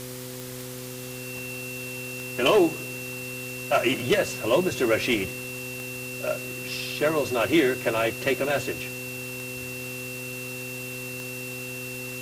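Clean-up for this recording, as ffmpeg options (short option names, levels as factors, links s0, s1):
-af "adeclick=t=4,bandreject=f=126.2:t=h:w=4,bandreject=f=252.4:t=h:w=4,bandreject=f=378.6:t=h:w=4,bandreject=f=504.8:t=h:w=4,bandreject=f=2700:w=30,afwtdn=0.01"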